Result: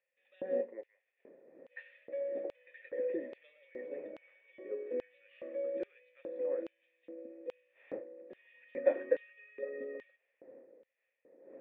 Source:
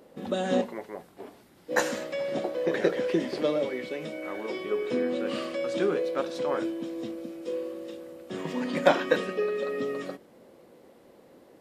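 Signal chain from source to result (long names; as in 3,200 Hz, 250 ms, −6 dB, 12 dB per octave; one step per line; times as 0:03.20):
wind on the microphone 510 Hz −41 dBFS
formant resonators in series e
auto-filter high-pass square 1.2 Hz 290–2,900 Hz
level −5 dB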